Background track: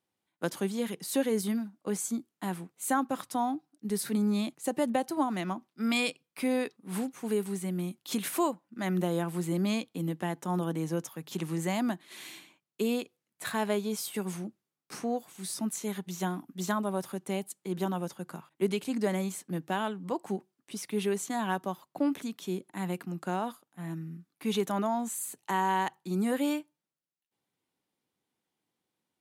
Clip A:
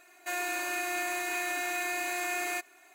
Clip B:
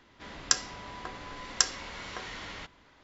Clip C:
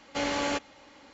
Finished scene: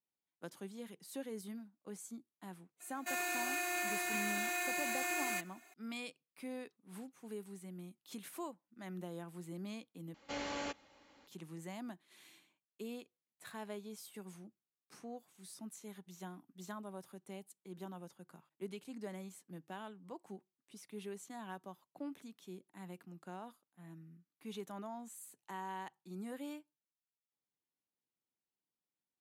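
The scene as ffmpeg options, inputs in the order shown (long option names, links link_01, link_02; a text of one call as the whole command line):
ffmpeg -i bed.wav -i cue0.wav -i cue1.wav -i cue2.wav -filter_complex "[0:a]volume=-16dB[link_01];[1:a]highshelf=frequency=4500:gain=3.5[link_02];[link_01]asplit=2[link_03][link_04];[link_03]atrim=end=10.144[link_05];[3:a]atrim=end=1.13,asetpts=PTS-STARTPTS,volume=-11.5dB[link_06];[link_04]atrim=start=11.266[link_07];[link_02]atrim=end=2.94,asetpts=PTS-STARTPTS,volume=-5.5dB,afade=type=in:duration=0.004:curve=hsin,afade=type=out:start_time=2.936:duration=0.004:curve=hsin,adelay=2800[link_08];[link_05][link_06]acrossfade=duration=0.004:curve1=hsin:curve2=hsin[link_09];[link_09][link_07]acrossfade=duration=0.004:curve1=hsin:curve2=hsin[link_10];[link_10][link_08]amix=inputs=2:normalize=0" out.wav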